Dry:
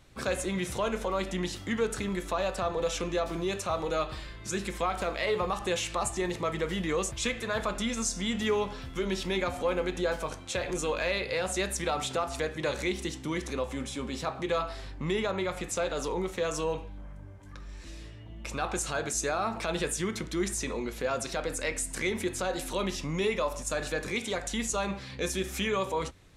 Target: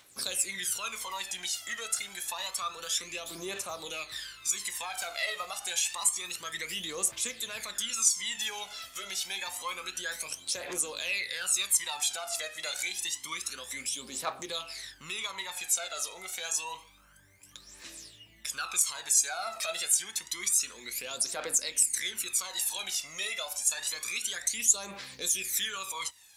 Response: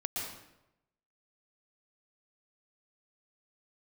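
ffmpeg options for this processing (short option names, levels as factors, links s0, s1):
-filter_complex "[0:a]aderivative,asplit=2[s0][s1];[s1]acompressor=threshold=0.00398:ratio=6,volume=0.891[s2];[s0][s2]amix=inputs=2:normalize=0,aphaser=in_gain=1:out_gain=1:delay=1.6:decay=0.74:speed=0.28:type=triangular,volume=1.58"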